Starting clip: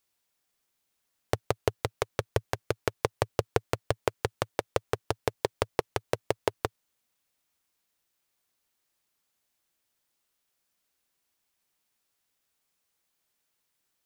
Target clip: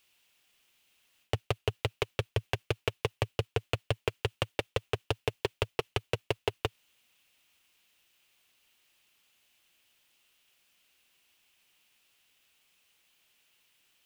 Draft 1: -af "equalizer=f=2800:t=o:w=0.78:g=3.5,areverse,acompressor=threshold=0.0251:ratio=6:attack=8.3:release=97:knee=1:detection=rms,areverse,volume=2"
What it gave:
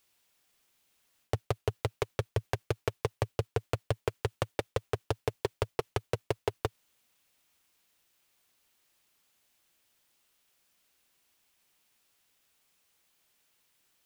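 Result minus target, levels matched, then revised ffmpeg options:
2 kHz band -3.5 dB
-af "equalizer=f=2800:t=o:w=0.78:g=13,areverse,acompressor=threshold=0.0251:ratio=6:attack=8.3:release=97:knee=1:detection=rms,areverse,volume=2"

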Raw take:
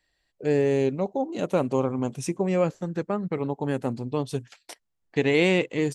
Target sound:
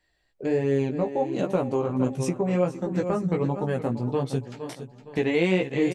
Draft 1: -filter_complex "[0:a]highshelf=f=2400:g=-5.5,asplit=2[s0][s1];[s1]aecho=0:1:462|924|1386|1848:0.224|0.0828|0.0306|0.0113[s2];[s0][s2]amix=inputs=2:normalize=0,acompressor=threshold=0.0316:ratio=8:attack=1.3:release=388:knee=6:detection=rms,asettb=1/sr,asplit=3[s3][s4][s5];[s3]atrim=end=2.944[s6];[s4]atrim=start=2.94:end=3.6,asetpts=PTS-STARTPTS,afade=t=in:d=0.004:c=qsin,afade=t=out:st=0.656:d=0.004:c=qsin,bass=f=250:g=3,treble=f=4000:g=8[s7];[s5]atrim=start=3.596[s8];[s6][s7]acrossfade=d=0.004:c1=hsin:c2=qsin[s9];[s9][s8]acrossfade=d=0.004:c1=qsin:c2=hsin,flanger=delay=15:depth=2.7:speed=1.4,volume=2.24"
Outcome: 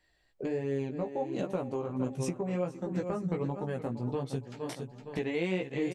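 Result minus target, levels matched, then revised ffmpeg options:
compression: peak gain reduction +9 dB
-filter_complex "[0:a]highshelf=f=2400:g=-5.5,asplit=2[s0][s1];[s1]aecho=0:1:462|924|1386|1848:0.224|0.0828|0.0306|0.0113[s2];[s0][s2]amix=inputs=2:normalize=0,acompressor=threshold=0.106:ratio=8:attack=1.3:release=388:knee=6:detection=rms,asettb=1/sr,asplit=3[s3][s4][s5];[s3]atrim=end=2.944[s6];[s4]atrim=start=2.94:end=3.6,asetpts=PTS-STARTPTS,afade=t=in:d=0.004:c=qsin,afade=t=out:st=0.656:d=0.004:c=qsin,bass=f=250:g=3,treble=f=4000:g=8[s7];[s5]atrim=start=3.596[s8];[s6][s7]acrossfade=d=0.004:c1=hsin:c2=qsin[s9];[s9][s8]acrossfade=d=0.004:c1=qsin:c2=hsin,flanger=delay=15:depth=2.7:speed=1.4,volume=2.24"

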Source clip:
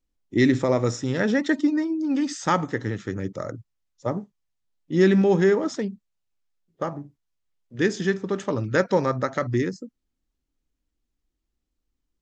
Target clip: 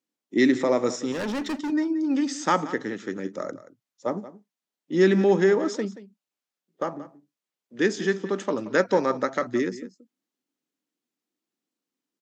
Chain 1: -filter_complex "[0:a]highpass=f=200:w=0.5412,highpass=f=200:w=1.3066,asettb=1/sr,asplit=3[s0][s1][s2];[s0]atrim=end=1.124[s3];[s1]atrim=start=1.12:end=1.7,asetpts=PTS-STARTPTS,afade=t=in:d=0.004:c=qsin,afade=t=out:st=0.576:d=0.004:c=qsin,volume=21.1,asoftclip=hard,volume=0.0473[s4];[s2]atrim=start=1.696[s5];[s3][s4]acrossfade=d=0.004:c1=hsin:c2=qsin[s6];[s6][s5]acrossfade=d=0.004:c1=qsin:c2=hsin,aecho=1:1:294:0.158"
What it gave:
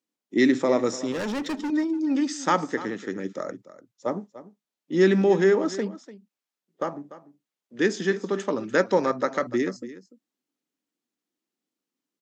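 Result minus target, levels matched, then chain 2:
echo 116 ms late
-filter_complex "[0:a]highpass=f=200:w=0.5412,highpass=f=200:w=1.3066,asettb=1/sr,asplit=3[s0][s1][s2];[s0]atrim=end=1.124[s3];[s1]atrim=start=1.12:end=1.7,asetpts=PTS-STARTPTS,afade=t=in:d=0.004:c=qsin,afade=t=out:st=0.576:d=0.004:c=qsin,volume=21.1,asoftclip=hard,volume=0.0473[s4];[s2]atrim=start=1.696[s5];[s3][s4]acrossfade=d=0.004:c1=hsin:c2=qsin[s6];[s6][s5]acrossfade=d=0.004:c1=qsin:c2=hsin,aecho=1:1:178:0.158"

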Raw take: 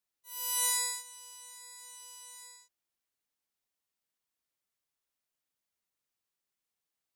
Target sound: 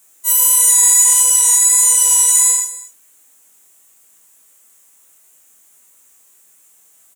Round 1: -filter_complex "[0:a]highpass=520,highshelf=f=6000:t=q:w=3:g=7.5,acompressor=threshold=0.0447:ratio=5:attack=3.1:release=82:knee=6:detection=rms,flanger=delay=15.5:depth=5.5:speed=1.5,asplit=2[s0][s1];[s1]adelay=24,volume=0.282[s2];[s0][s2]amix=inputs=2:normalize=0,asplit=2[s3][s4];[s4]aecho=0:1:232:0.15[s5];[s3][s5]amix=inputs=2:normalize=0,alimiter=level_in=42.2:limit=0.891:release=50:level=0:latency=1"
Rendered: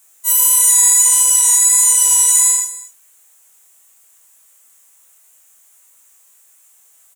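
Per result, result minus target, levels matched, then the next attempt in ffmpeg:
compression: peak gain reduction +11.5 dB; 250 Hz band -7.0 dB
-filter_complex "[0:a]highpass=520,highshelf=f=6000:t=q:w=3:g=7.5,flanger=delay=15.5:depth=5.5:speed=1.5,asplit=2[s0][s1];[s1]adelay=24,volume=0.282[s2];[s0][s2]amix=inputs=2:normalize=0,asplit=2[s3][s4];[s4]aecho=0:1:232:0.15[s5];[s3][s5]amix=inputs=2:normalize=0,alimiter=level_in=42.2:limit=0.891:release=50:level=0:latency=1"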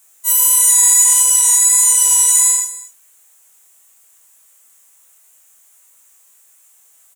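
250 Hz band -7.5 dB
-filter_complex "[0:a]highpass=180,highshelf=f=6000:t=q:w=3:g=7.5,flanger=delay=15.5:depth=5.5:speed=1.5,asplit=2[s0][s1];[s1]adelay=24,volume=0.282[s2];[s0][s2]amix=inputs=2:normalize=0,asplit=2[s3][s4];[s4]aecho=0:1:232:0.15[s5];[s3][s5]amix=inputs=2:normalize=0,alimiter=level_in=42.2:limit=0.891:release=50:level=0:latency=1"

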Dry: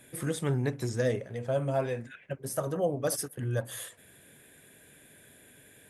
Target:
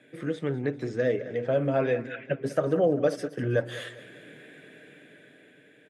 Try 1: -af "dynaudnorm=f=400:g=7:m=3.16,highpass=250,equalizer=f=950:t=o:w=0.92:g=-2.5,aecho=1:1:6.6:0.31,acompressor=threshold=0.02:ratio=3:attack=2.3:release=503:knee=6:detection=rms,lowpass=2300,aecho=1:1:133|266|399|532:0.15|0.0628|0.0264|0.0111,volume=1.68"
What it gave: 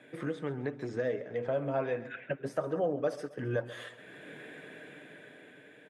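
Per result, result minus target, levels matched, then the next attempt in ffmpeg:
compression: peak gain reduction +9.5 dB; echo 65 ms early; 1 kHz band +3.0 dB
-af "dynaudnorm=f=400:g=7:m=3.16,highpass=250,equalizer=f=950:t=o:w=0.92:g=-2.5,aecho=1:1:6.6:0.31,acompressor=threshold=0.0794:ratio=3:attack=2.3:release=503:knee=6:detection=rms,lowpass=2300,aecho=1:1:133|266|399|532:0.15|0.0628|0.0264|0.0111,volume=1.68"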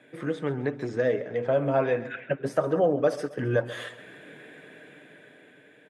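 echo 65 ms early; 1 kHz band +3.0 dB
-af "dynaudnorm=f=400:g=7:m=3.16,highpass=250,equalizer=f=950:t=o:w=0.92:g=-2.5,aecho=1:1:6.6:0.31,acompressor=threshold=0.0794:ratio=3:attack=2.3:release=503:knee=6:detection=rms,lowpass=2300,aecho=1:1:198|396|594|792:0.15|0.0628|0.0264|0.0111,volume=1.68"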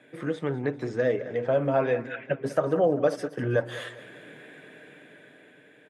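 1 kHz band +3.0 dB
-af "dynaudnorm=f=400:g=7:m=3.16,highpass=250,equalizer=f=950:t=o:w=0.92:g=-11.5,aecho=1:1:6.6:0.31,acompressor=threshold=0.0794:ratio=3:attack=2.3:release=503:knee=6:detection=rms,lowpass=2300,aecho=1:1:198|396|594|792:0.15|0.0628|0.0264|0.0111,volume=1.68"

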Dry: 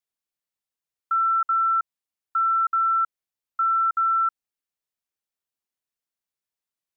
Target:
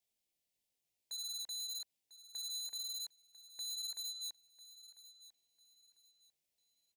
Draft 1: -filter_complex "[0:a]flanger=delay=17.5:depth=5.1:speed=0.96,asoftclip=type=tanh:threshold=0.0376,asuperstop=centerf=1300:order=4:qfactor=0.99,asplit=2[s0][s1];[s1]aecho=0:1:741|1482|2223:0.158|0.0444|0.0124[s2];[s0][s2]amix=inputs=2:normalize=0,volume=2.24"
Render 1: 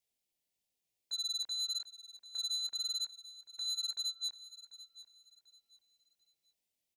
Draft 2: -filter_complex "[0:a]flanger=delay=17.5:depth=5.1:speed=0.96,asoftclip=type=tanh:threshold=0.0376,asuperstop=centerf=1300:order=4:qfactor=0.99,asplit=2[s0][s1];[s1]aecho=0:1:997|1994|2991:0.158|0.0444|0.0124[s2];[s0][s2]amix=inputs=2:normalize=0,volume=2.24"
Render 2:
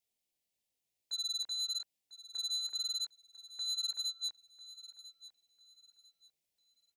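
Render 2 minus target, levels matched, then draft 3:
saturation: distortion -5 dB
-filter_complex "[0:a]flanger=delay=17.5:depth=5.1:speed=0.96,asoftclip=type=tanh:threshold=0.01,asuperstop=centerf=1300:order=4:qfactor=0.99,asplit=2[s0][s1];[s1]aecho=0:1:997|1994|2991:0.158|0.0444|0.0124[s2];[s0][s2]amix=inputs=2:normalize=0,volume=2.24"

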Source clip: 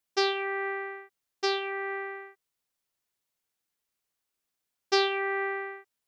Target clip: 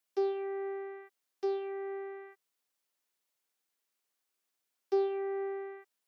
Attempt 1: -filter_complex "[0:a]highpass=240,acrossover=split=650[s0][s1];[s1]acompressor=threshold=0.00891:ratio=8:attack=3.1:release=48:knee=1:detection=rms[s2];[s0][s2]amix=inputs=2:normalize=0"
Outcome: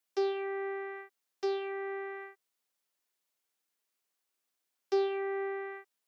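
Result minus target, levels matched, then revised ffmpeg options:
compression: peak gain reduction -9 dB
-filter_complex "[0:a]highpass=240,acrossover=split=650[s0][s1];[s1]acompressor=threshold=0.00266:ratio=8:attack=3.1:release=48:knee=1:detection=rms[s2];[s0][s2]amix=inputs=2:normalize=0"

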